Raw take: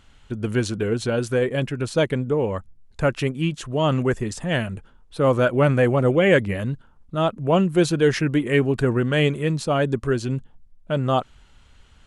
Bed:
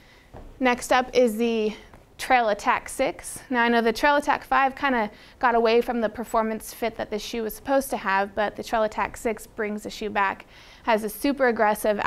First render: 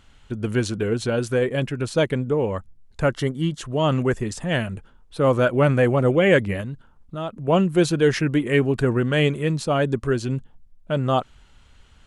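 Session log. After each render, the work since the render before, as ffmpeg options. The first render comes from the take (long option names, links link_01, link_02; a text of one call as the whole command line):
ffmpeg -i in.wav -filter_complex "[0:a]asettb=1/sr,asplit=3[link_01][link_02][link_03];[link_01]atrim=end=3.094[link_04];[link_02]atrim=start=3.09:end=3.59,asetpts=PTS-STARTPTS,afade=type=in:duration=0.004:curve=qsin,afade=type=out:start_time=0.496:duration=0.004:curve=qsin,asuperstop=centerf=2500:order=4:qfactor=4[link_05];[link_03]atrim=start=3.586[link_06];[link_04][link_05]acrossfade=duration=0.004:curve1=hsin:curve2=qsin[link_07];[link_07][link_06]acrossfade=duration=0.004:curve1=qsin:curve2=hsin,asettb=1/sr,asplit=3[link_08][link_09][link_10];[link_08]atrim=end=6.614[link_11];[link_09]atrim=start=6.61:end=7.48,asetpts=PTS-STARTPTS,afade=type=in:duration=0.004:curve=qsin,afade=type=out:start_time=0.866:duration=0.004:curve=qsin,acompressor=threshold=-31dB:ratio=2:attack=3.2:release=140:knee=1:detection=peak[link_12];[link_10]atrim=start=7.476[link_13];[link_11][link_12]acrossfade=duration=0.004:curve1=hsin:curve2=qsin[link_14];[link_14][link_13]acrossfade=duration=0.004:curve1=qsin:curve2=hsin" out.wav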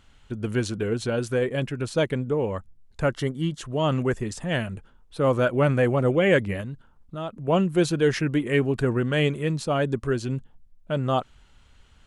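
ffmpeg -i in.wav -af "volume=-3dB" out.wav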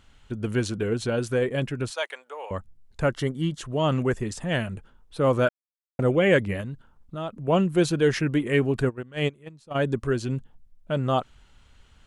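ffmpeg -i in.wav -filter_complex "[0:a]asettb=1/sr,asplit=3[link_01][link_02][link_03];[link_01]atrim=end=1.904[link_04];[link_02]atrim=start=1.9:end=2.51,asetpts=PTS-STARTPTS,afade=type=in:duration=0.004:curve=qsin,afade=type=out:start_time=0.606:duration=0.004:curve=qsin,highpass=frequency=710:width=0.5412,highpass=frequency=710:width=1.3066[link_05];[link_03]atrim=start=2.506[link_06];[link_04][link_05]acrossfade=duration=0.004:curve1=hsin:curve2=qsin[link_07];[link_07][link_06]acrossfade=duration=0.004:curve1=qsin:curve2=hsin,asplit=3[link_08][link_09][link_10];[link_08]afade=type=out:start_time=8.88:duration=0.02[link_11];[link_09]agate=range=-22dB:threshold=-21dB:ratio=16:release=100:detection=peak,afade=type=in:start_time=8.88:duration=0.02,afade=type=out:start_time=9.74:duration=0.02[link_12];[link_10]afade=type=in:start_time=9.74:duration=0.02[link_13];[link_11][link_12][link_13]amix=inputs=3:normalize=0,asplit=3[link_14][link_15][link_16];[link_14]atrim=end=5.49,asetpts=PTS-STARTPTS,afade=type=out:start_time=5.486:duration=0.004:curve=hsin[link_17];[link_15]atrim=start=5.49:end=5.99,asetpts=PTS-STARTPTS,volume=0[link_18];[link_16]atrim=start=5.99,asetpts=PTS-STARTPTS,afade=type=in:duration=0.004:curve=hsin[link_19];[link_17][link_18][link_19]concat=n=3:v=0:a=1" out.wav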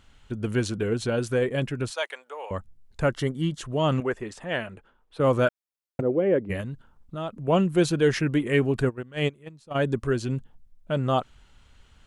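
ffmpeg -i in.wav -filter_complex "[0:a]asettb=1/sr,asplit=3[link_01][link_02][link_03];[link_01]atrim=end=4.004[link_04];[link_02]atrim=start=4:end=5.2,asetpts=PTS-STARTPTS,afade=type=in:duration=0.004:curve=qsin,afade=type=out:start_time=1.196:duration=0.004:curve=qsin,bass=frequency=250:gain=-12,treble=frequency=4000:gain=-10[link_05];[link_03]atrim=start=5.196[link_06];[link_04][link_05]acrossfade=duration=0.004:curve1=hsin:curve2=qsin[link_07];[link_07][link_06]acrossfade=duration=0.004:curve1=qsin:curve2=hsin,asplit=3[link_08][link_09][link_10];[link_08]afade=type=out:start_time=6:duration=0.02[link_11];[link_09]bandpass=frequency=370:width_type=q:width=1.2,afade=type=in:start_time=6:duration=0.02,afade=type=out:start_time=6.49:duration=0.02[link_12];[link_10]afade=type=in:start_time=6.49:duration=0.02[link_13];[link_11][link_12][link_13]amix=inputs=3:normalize=0" out.wav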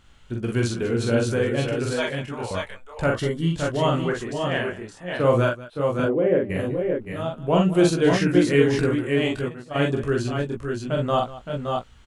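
ffmpeg -i in.wav -filter_complex "[0:a]asplit=2[link_01][link_02];[link_02]adelay=17,volume=-8dB[link_03];[link_01][link_03]amix=inputs=2:normalize=0,aecho=1:1:43|60|195|568|596:0.708|0.126|0.141|0.473|0.562" out.wav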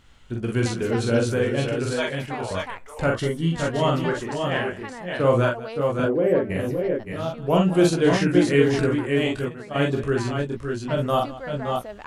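ffmpeg -i in.wav -i bed.wav -filter_complex "[1:a]volume=-15dB[link_01];[0:a][link_01]amix=inputs=2:normalize=0" out.wav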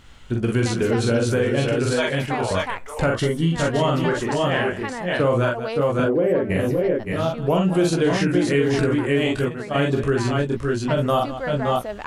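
ffmpeg -i in.wav -filter_complex "[0:a]asplit=2[link_01][link_02];[link_02]alimiter=limit=-14dB:level=0:latency=1,volume=1.5dB[link_03];[link_01][link_03]amix=inputs=2:normalize=0,acompressor=threshold=-18dB:ratio=2.5" out.wav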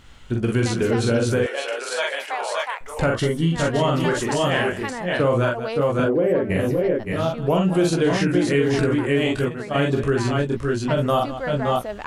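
ffmpeg -i in.wav -filter_complex "[0:a]asettb=1/sr,asplit=3[link_01][link_02][link_03];[link_01]atrim=end=1.464[link_04];[link_02]atrim=start=1.46:end=2.81,asetpts=PTS-STARTPTS,afade=type=in:duration=0.004:curve=qsin,afade=type=out:start_time=1.346:duration=0.004:curve=qsin,highpass=frequency=560:width=0.5412,highpass=frequency=560:width=1.3066[link_05];[link_03]atrim=start=2.806[link_06];[link_04][link_05]acrossfade=duration=0.004:curve1=hsin:curve2=qsin[link_07];[link_07][link_06]acrossfade=duration=0.004:curve1=qsin:curve2=hsin,asettb=1/sr,asplit=3[link_08][link_09][link_10];[link_08]atrim=end=4.004[link_11];[link_09]atrim=start=4:end=4.91,asetpts=PTS-STARTPTS,afade=type=in:duration=0.004:curve=qsin,afade=type=out:start_time=0.906:duration=0.004:curve=qsin,highshelf=frequency=5200:gain=9.5[link_12];[link_10]atrim=start=4.906[link_13];[link_11][link_12]acrossfade=duration=0.004:curve1=hsin:curve2=qsin[link_14];[link_14][link_13]acrossfade=duration=0.004:curve1=qsin:curve2=hsin" out.wav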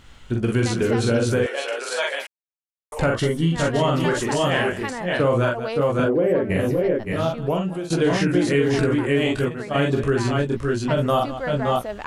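ffmpeg -i in.wav -filter_complex "[0:a]asplit=4[link_01][link_02][link_03][link_04];[link_01]atrim=end=2.27,asetpts=PTS-STARTPTS,afade=type=out:start_time=2.266:duration=0.004:curve=hsin[link_05];[link_02]atrim=start=2.27:end=2.92,asetpts=PTS-STARTPTS,volume=0[link_06];[link_03]atrim=start=2.92:end=7.9,asetpts=PTS-STARTPTS,afade=type=in:duration=0.004:curve=hsin,afade=type=out:start_time=4.4:duration=0.58:silence=0.158489[link_07];[link_04]atrim=start=7.9,asetpts=PTS-STARTPTS,afade=type=in:duration=0.004:curve=hsin:silence=0.158489[link_08];[link_05][link_06][link_07][link_08]concat=n=4:v=0:a=1" out.wav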